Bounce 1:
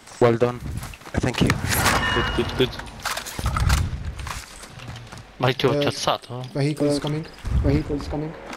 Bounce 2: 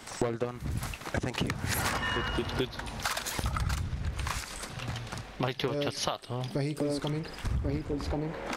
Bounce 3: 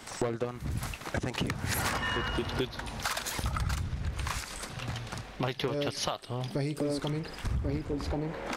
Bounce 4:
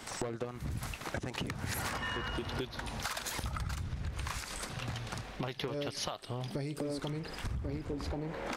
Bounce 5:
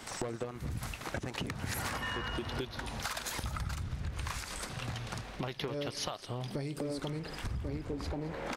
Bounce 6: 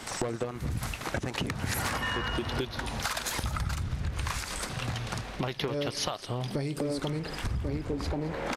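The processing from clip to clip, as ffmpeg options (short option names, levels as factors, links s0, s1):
-af "acompressor=threshold=0.0398:ratio=6"
-af "asoftclip=type=tanh:threshold=0.133"
-af "acompressor=threshold=0.0178:ratio=3"
-af "aecho=1:1:217:0.15"
-af "aresample=32000,aresample=44100,volume=1.88"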